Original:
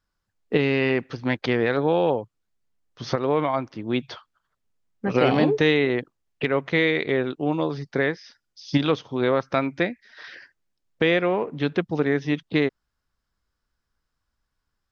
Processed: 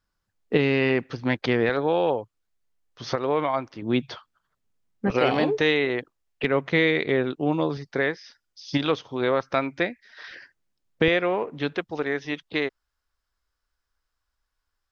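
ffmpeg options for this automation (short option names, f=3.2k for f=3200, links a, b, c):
-af "asetnsamples=n=441:p=0,asendcmd='1.69 equalizer g -6;3.82 equalizer g 2.5;5.1 equalizer g -7.5;6.44 equalizer g 0.5;7.77 equalizer g -5.5;10.31 equalizer g 1.5;11.08 equalizer g -6;11.74 equalizer g -13',equalizer=f=170:t=o:w=1.9:g=0"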